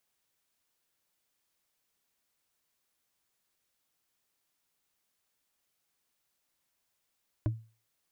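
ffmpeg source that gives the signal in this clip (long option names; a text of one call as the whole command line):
ffmpeg -f lavfi -i "aevalsrc='0.0708*pow(10,-3*t/0.35)*sin(2*PI*112*t)+0.0376*pow(10,-3*t/0.104)*sin(2*PI*308.8*t)+0.02*pow(10,-3*t/0.046)*sin(2*PI*605.2*t)+0.0106*pow(10,-3*t/0.025)*sin(2*PI*1000.5*t)+0.00562*pow(10,-3*t/0.016)*sin(2*PI*1494.1*t)':duration=0.45:sample_rate=44100" out.wav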